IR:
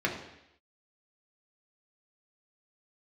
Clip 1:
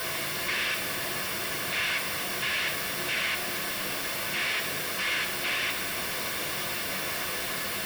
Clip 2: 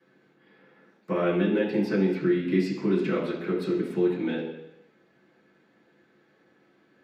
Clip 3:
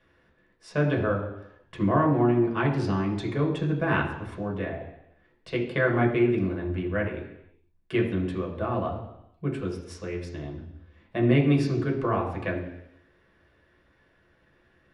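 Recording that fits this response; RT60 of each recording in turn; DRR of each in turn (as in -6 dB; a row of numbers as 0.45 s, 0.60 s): 3; 0.80 s, 0.80 s, 0.80 s; 3.5 dB, -10.5 dB, -1.5 dB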